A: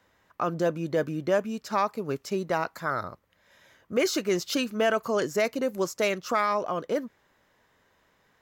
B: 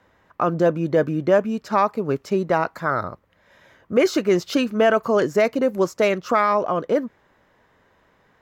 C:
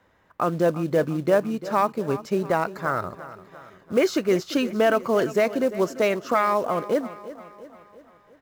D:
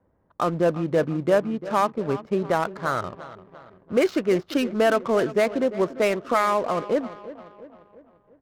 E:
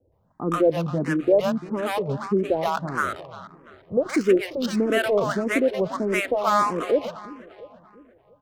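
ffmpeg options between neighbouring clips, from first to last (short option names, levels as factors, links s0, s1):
-af "highshelf=f=3200:g=-12,volume=2.51"
-filter_complex "[0:a]aecho=1:1:345|690|1035|1380|1725:0.168|0.0873|0.0454|0.0236|0.0123,asplit=2[s0][s1];[s1]acrusher=bits=4:mode=log:mix=0:aa=0.000001,volume=0.708[s2];[s0][s2]amix=inputs=2:normalize=0,volume=0.422"
-af "acrusher=bits=6:mode=log:mix=0:aa=0.000001,adynamicsmooth=sensitivity=7:basefreq=590"
-filter_complex "[0:a]acrossover=split=740[s0][s1];[s1]adelay=120[s2];[s0][s2]amix=inputs=2:normalize=0,asplit=2[s3][s4];[s4]afreqshift=1.6[s5];[s3][s5]amix=inputs=2:normalize=1,volume=1.68"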